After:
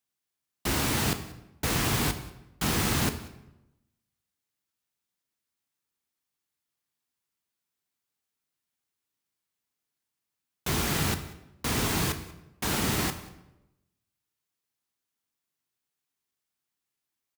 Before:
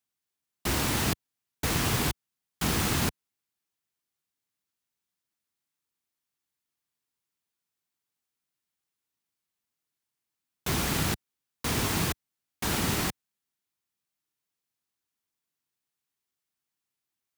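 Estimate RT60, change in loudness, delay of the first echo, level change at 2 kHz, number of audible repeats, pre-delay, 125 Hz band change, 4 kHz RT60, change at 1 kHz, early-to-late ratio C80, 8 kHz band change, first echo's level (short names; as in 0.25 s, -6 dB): 0.95 s, +0.5 dB, 0.188 s, +0.5 dB, 1, 11 ms, +0.5 dB, 0.65 s, +0.5 dB, 13.5 dB, +0.5 dB, -22.0 dB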